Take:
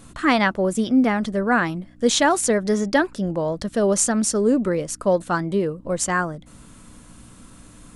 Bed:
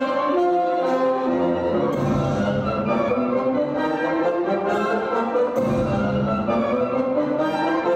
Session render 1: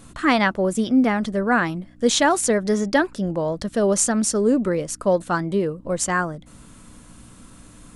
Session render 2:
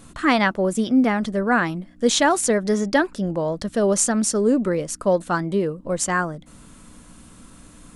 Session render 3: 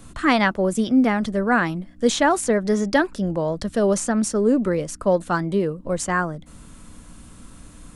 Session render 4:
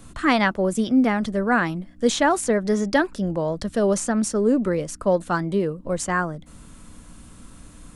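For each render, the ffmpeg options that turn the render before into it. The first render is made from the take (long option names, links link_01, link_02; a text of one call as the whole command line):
ffmpeg -i in.wav -af anull out.wav
ffmpeg -i in.wav -af "bandreject=frequency=60:width_type=h:width=4,bandreject=frequency=120:width_type=h:width=4" out.wav
ffmpeg -i in.wav -filter_complex "[0:a]acrossover=split=110|2600[link_01][link_02][link_03];[link_01]acontrast=38[link_04];[link_03]alimiter=limit=-16.5dB:level=0:latency=1:release=425[link_05];[link_04][link_02][link_05]amix=inputs=3:normalize=0" out.wav
ffmpeg -i in.wav -af "volume=-1dB" out.wav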